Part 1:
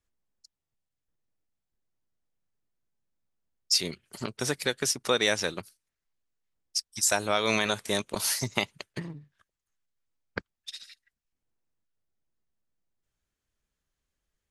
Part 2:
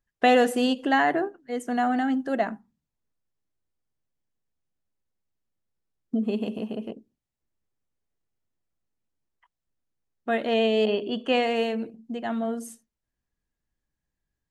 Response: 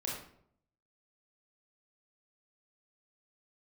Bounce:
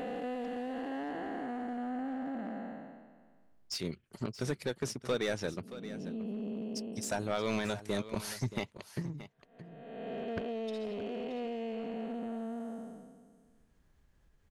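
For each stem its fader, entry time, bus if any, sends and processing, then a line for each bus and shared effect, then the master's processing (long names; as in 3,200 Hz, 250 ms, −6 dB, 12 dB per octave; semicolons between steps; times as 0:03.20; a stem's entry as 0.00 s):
−6.0 dB, 0.00 s, no send, echo send −14 dB, low-shelf EQ 360 Hz +7.5 dB; gain into a clipping stage and back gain 18.5 dB
−2.0 dB, 0.00 s, no send, no echo send, spectrum smeared in time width 803 ms; downward compressor 8 to 1, threshold −32 dBFS, peak gain reduction 9 dB; hard clipping −30.5 dBFS, distortion −21 dB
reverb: not used
echo: single-tap delay 625 ms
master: high-shelf EQ 3,100 Hz −10.5 dB; upward compression, threshold −52 dBFS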